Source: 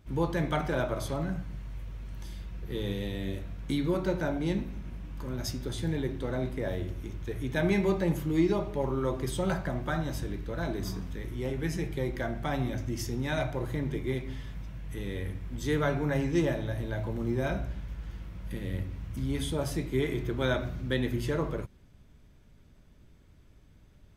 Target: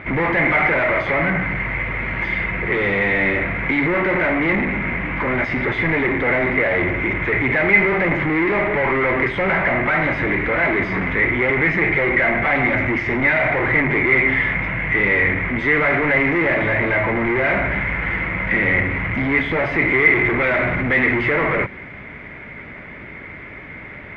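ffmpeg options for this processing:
-filter_complex "[0:a]asplit=2[a][b];[b]highpass=f=720:p=1,volume=39dB,asoftclip=type=tanh:threshold=-13dB[c];[a][c]amix=inputs=2:normalize=0,lowpass=f=1.1k:p=1,volume=-6dB,lowpass=f=2.1k:t=q:w=11"

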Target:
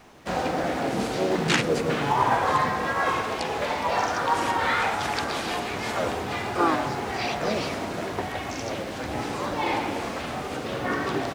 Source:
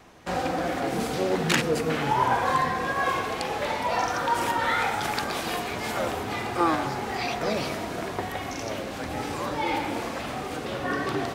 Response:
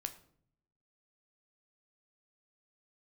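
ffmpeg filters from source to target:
-filter_complex "[0:a]asplit=3[a][b][c];[b]asetrate=37084,aresample=44100,atempo=1.18921,volume=-8dB[d];[c]asetrate=52444,aresample=44100,atempo=0.840896,volume=-9dB[e];[a][d][e]amix=inputs=3:normalize=0,acrusher=bits=6:mode=log:mix=0:aa=0.000001,acrossover=split=9300[f][g];[g]acompressor=threshold=-56dB:ratio=4:attack=1:release=60[h];[f][h]amix=inputs=2:normalize=0"

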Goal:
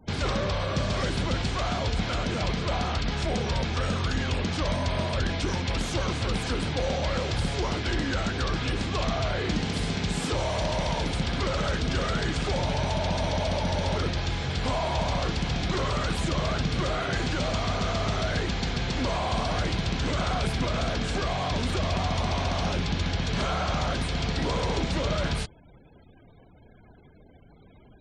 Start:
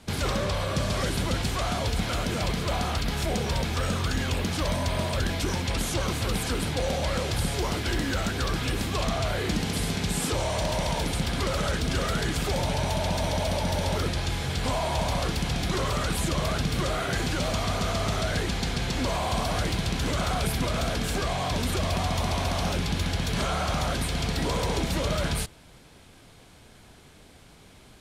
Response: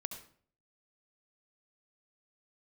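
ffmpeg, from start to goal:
-af "lowpass=6k,afftfilt=real='re*gte(hypot(re,im),0.00355)':imag='im*gte(hypot(re,im),0.00355)':win_size=1024:overlap=0.75"

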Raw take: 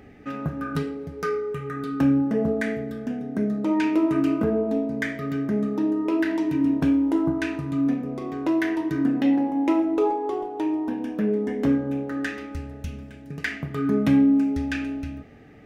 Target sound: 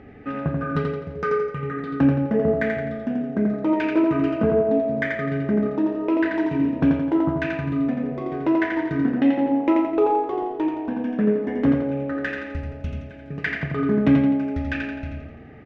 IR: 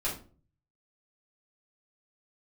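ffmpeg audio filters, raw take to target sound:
-af "lowpass=2.6k,aecho=1:1:85|170|255|340|425|510:0.631|0.297|0.139|0.0655|0.0308|0.0145,volume=3dB"

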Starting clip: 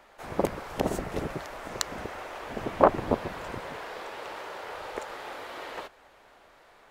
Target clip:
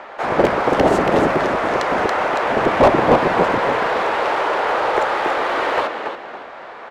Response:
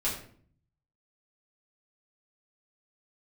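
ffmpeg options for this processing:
-filter_complex "[0:a]asplit=5[a][b][c][d][e];[b]adelay=280,afreqshift=-67,volume=-8dB[f];[c]adelay=560,afreqshift=-134,volume=-18.2dB[g];[d]adelay=840,afreqshift=-201,volume=-28.3dB[h];[e]adelay=1120,afreqshift=-268,volume=-38.5dB[i];[a][f][g][h][i]amix=inputs=5:normalize=0,asplit=2[j][k];[k]highpass=f=720:p=1,volume=32dB,asoftclip=type=tanh:threshold=-1dB[l];[j][l]amix=inputs=2:normalize=0,lowpass=f=1.1k:p=1,volume=-6dB,adynamicsmooth=sensitivity=4.5:basefreq=5.9k"

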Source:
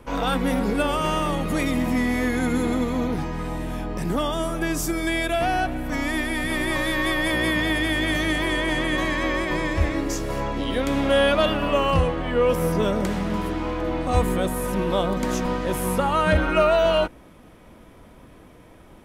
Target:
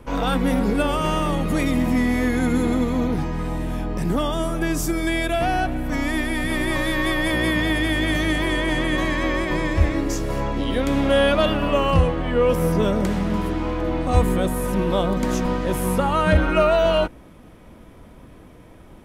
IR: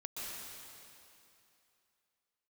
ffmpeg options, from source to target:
-af "lowshelf=f=320:g=4.5"

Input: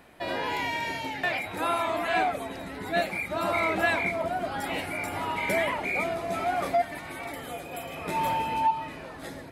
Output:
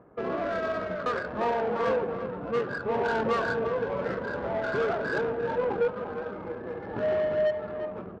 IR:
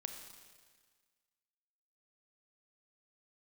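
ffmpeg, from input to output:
-filter_complex "[0:a]equalizer=f=150:w=0.33:g=-6.5,asetrate=51156,aresample=44100,lowpass=f=2.2k:p=1,asetrate=26222,aresample=44100,atempo=1.68179,asplit=2[a][b];[1:a]atrim=start_sample=2205[c];[b][c]afir=irnorm=-1:irlink=0,volume=-1.5dB[d];[a][d]amix=inputs=2:normalize=0,asoftclip=type=tanh:threshold=-22dB,highpass=65,aemphasis=mode=reproduction:type=cd,aecho=1:1:347:0.335,adynamicsmooth=sensitivity=2.5:basefreq=1.1k,volume=1.5dB"

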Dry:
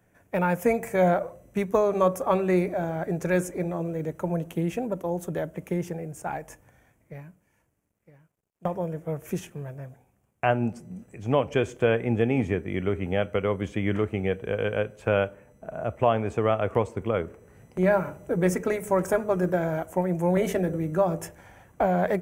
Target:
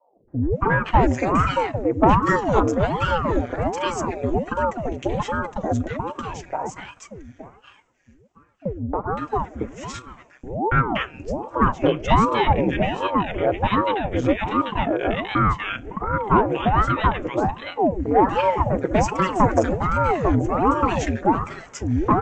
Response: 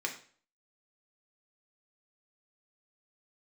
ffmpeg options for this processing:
-filter_complex "[0:a]aecho=1:1:4.6:0.98,acrossover=split=260|1300[a][b][c];[b]adelay=280[d];[c]adelay=520[e];[a][d][e]amix=inputs=3:normalize=0,acontrast=84,aresample=16000,aresample=44100,aeval=exprs='val(0)*sin(2*PI*410*n/s+410*0.85/1.3*sin(2*PI*1.3*n/s))':c=same"

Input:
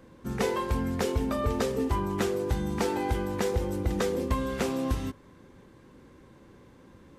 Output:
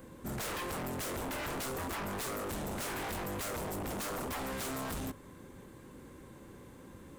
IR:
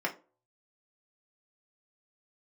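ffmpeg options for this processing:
-af "aexciter=amount=2.5:drive=6.9:freq=7.3k,aeval=exprs='0.178*(cos(1*acos(clip(val(0)/0.178,-1,1)))-cos(1*PI/2))+0.0794*(cos(7*acos(clip(val(0)/0.178,-1,1)))-cos(7*PI/2))':c=same,volume=31.5dB,asoftclip=hard,volume=-31.5dB,volume=-5dB"

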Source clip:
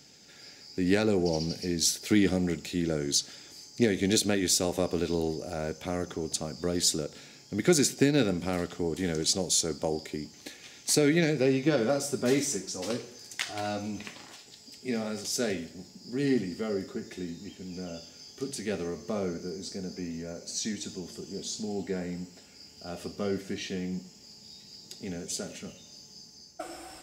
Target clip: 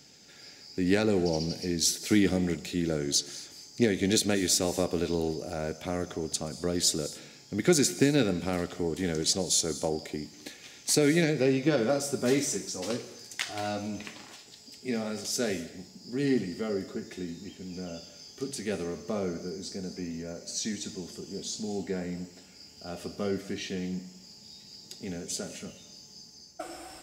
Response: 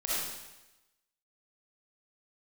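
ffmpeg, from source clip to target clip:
-filter_complex "[0:a]asplit=2[a][b];[b]highshelf=f=5.2k:g=7.5[c];[1:a]atrim=start_sample=2205,afade=t=out:st=0.21:d=0.01,atrim=end_sample=9702,adelay=124[d];[c][d]afir=irnorm=-1:irlink=0,volume=-25dB[e];[a][e]amix=inputs=2:normalize=0"

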